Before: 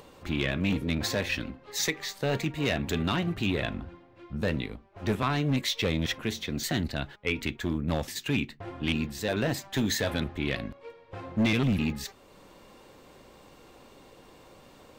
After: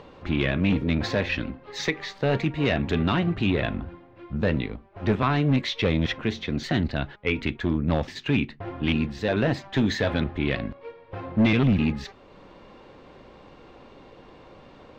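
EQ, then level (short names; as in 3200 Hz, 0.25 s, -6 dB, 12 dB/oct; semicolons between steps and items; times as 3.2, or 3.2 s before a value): air absorption 210 m; +5.5 dB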